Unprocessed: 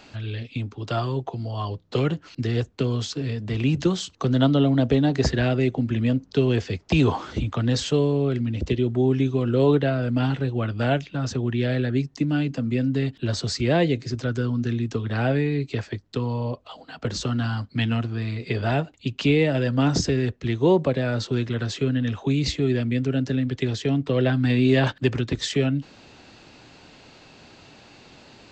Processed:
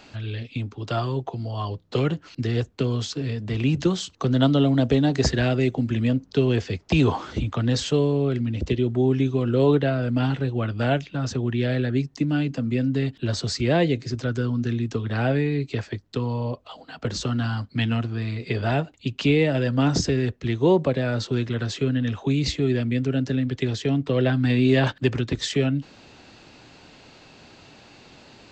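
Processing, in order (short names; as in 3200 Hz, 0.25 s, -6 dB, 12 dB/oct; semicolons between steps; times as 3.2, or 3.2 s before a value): 4.42–6.08 high shelf 7100 Hz +9.5 dB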